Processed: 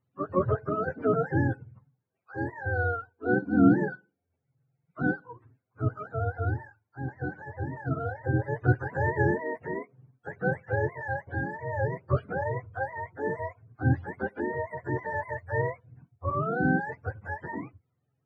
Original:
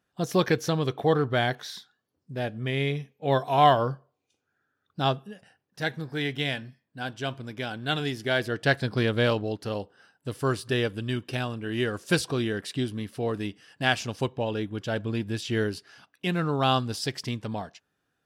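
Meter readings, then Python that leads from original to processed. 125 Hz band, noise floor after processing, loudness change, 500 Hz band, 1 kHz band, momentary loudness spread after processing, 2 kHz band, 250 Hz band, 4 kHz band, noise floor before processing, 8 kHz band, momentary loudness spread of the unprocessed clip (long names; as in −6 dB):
0.0 dB, −80 dBFS, −2.0 dB, −3.0 dB, −4.5 dB, 12 LU, −1.5 dB, +0.5 dB, below −35 dB, −79 dBFS, below −30 dB, 12 LU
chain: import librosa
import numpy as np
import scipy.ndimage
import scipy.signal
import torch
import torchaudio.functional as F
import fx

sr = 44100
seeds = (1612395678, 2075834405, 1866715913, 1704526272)

y = fx.octave_mirror(x, sr, pivot_hz=450.0)
y = y * librosa.db_to_amplitude(-1.0)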